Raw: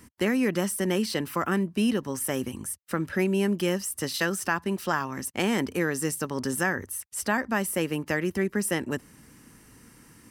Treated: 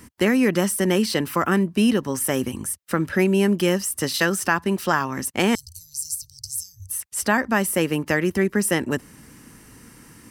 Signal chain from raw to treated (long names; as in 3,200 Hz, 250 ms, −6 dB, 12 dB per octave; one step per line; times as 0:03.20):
0:05.55–0:06.90: Chebyshev band-stop filter 100–4,400 Hz, order 5
level +6 dB